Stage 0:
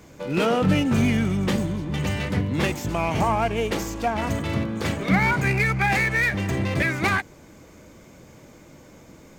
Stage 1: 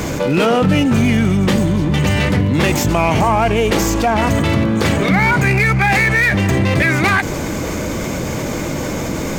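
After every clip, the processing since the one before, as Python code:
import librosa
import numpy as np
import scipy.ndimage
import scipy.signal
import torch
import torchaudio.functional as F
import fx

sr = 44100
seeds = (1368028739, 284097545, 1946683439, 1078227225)

y = fx.env_flatten(x, sr, amount_pct=70)
y = F.gain(torch.from_numpy(y), 4.0).numpy()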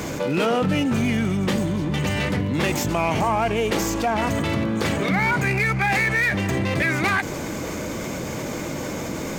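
y = fx.low_shelf(x, sr, hz=81.0, db=-9.0)
y = F.gain(torch.from_numpy(y), -6.5).numpy()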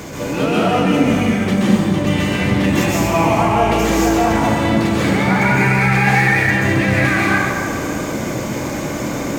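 y = fx.rev_plate(x, sr, seeds[0], rt60_s=2.3, hf_ratio=0.6, predelay_ms=115, drr_db=-7.5)
y = F.gain(torch.from_numpy(y), -2.0).numpy()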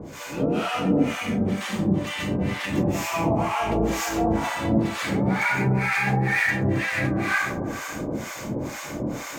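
y = fx.harmonic_tremolo(x, sr, hz=2.1, depth_pct=100, crossover_hz=800.0)
y = F.gain(torch.from_numpy(y), -4.0).numpy()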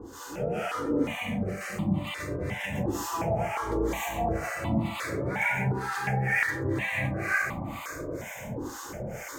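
y = fx.phaser_held(x, sr, hz=2.8, low_hz=620.0, high_hz=1600.0)
y = F.gain(torch.from_numpy(y), -2.0).numpy()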